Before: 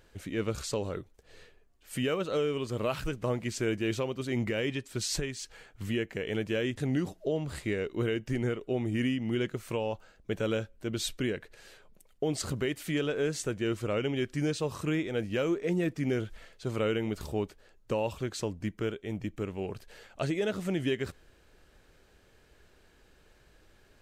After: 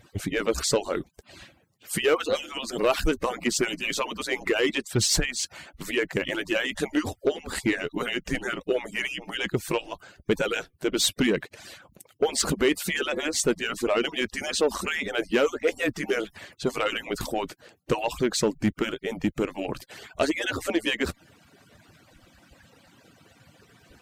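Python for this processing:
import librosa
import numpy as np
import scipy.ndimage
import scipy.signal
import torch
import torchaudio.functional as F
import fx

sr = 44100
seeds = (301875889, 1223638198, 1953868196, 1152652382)

y = fx.hpss_only(x, sr, part='percussive')
y = fx.cheby_harmonics(y, sr, harmonics=(5,), levels_db=(-20,), full_scale_db=-19.5)
y = y * 10.0 ** (9.0 / 20.0)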